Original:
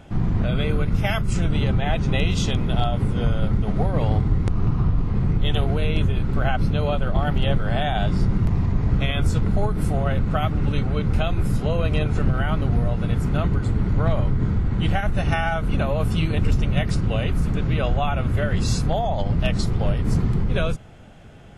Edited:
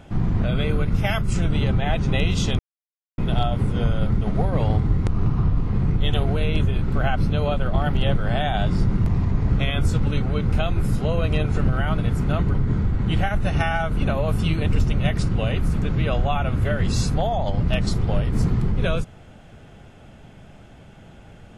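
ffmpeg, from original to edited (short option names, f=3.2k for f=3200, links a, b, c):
-filter_complex "[0:a]asplit=5[a][b][c][d][e];[a]atrim=end=2.59,asetpts=PTS-STARTPTS,afade=t=out:st=2.586:d=0.004:c=hsin,apad=pad_dur=0.59[f];[b]atrim=start=2.59:end=9.442,asetpts=PTS-STARTPTS,afade=t=in:d=0.004:c=hsin[g];[c]atrim=start=10.638:end=12.592[h];[d]atrim=start=13.028:end=13.592[i];[e]atrim=start=14.258[j];[f][g]concat=n=2:v=0:a=1[k];[k][h]acrossfade=d=0.004:c1=hsin:c2=hsin[l];[l][i]acrossfade=d=0.004:c1=hsin:c2=hsin[m];[m][j]acrossfade=d=0.004:c1=hsin:c2=hsin"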